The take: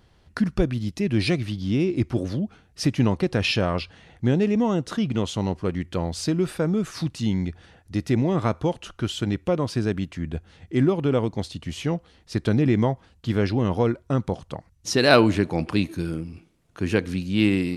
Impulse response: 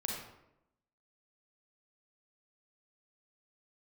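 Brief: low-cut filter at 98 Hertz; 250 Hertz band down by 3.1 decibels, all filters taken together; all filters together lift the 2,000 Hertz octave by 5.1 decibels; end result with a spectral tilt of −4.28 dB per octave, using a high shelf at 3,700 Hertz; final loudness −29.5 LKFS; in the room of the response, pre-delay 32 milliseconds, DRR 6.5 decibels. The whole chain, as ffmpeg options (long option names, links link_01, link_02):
-filter_complex "[0:a]highpass=98,equalizer=frequency=250:width_type=o:gain=-4,equalizer=frequency=2000:width_type=o:gain=6,highshelf=frequency=3700:gain=3.5,asplit=2[link_01][link_02];[1:a]atrim=start_sample=2205,adelay=32[link_03];[link_02][link_03]afir=irnorm=-1:irlink=0,volume=-9dB[link_04];[link_01][link_04]amix=inputs=2:normalize=0,volume=-5.5dB"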